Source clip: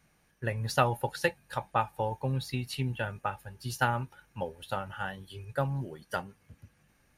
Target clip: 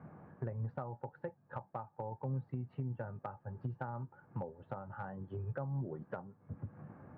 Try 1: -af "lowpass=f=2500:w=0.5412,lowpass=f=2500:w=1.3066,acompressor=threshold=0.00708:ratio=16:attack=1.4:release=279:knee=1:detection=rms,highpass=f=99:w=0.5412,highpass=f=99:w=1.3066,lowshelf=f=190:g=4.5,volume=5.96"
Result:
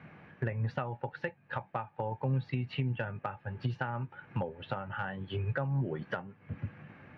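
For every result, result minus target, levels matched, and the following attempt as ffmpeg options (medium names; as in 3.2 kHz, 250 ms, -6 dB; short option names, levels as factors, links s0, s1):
2 kHz band +8.0 dB; compression: peak gain reduction -5.5 dB
-af "lowpass=f=1200:w=0.5412,lowpass=f=1200:w=1.3066,acompressor=threshold=0.00708:ratio=16:attack=1.4:release=279:knee=1:detection=rms,highpass=f=99:w=0.5412,highpass=f=99:w=1.3066,lowshelf=f=190:g=4.5,volume=5.96"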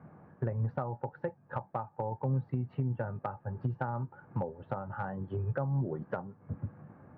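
compression: peak gain reduction -7 dB
-af "lowpass=f=1200:w=0.5412,lowpass=f=1200:w=1.3066,acompressor=threshold=0.00299:ratio=16:attack=1.4:release=279:knee=1:detection=rms,highpass=f=99:w=0.5412,highpass=f=99:w=1.3066,lowshelf=f=190:g=4.5,volume=5.96"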